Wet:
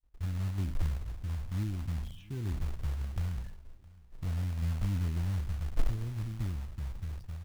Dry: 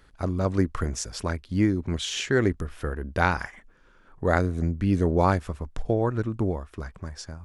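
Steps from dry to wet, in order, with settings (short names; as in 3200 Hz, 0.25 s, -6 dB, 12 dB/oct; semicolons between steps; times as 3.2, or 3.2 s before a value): spectral trails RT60 0.74 s; in parallel at -0.5 dB: compressor 8:1, threshold -32 dBFS, peak gain reduction 17.5 dB; on the sum: RIAA curve playback; expander -21 dBFS; passive tone stack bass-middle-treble 6-0-2; spectral gate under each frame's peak -25 dB strong; short-mantissa float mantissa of 2-bit; feedback echo 0.664 s, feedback 33%, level -22.5 dB; gain -7 dB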